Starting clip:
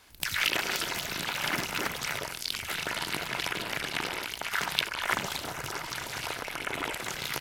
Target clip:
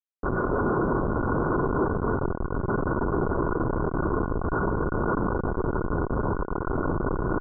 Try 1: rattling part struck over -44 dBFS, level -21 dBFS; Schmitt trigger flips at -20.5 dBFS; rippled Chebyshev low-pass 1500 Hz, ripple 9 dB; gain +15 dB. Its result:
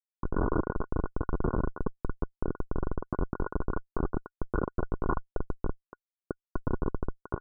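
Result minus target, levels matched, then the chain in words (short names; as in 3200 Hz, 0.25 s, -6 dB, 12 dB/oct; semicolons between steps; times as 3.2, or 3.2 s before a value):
Schmitt trigger: distortion +14 dB
rattling part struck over -44 dBFS, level -21 dBFS; Schmitt trigger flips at -29.5 dBFS; rippled Chebyshev low-pass 1500 Hz, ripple 9 dB; gain +15 dB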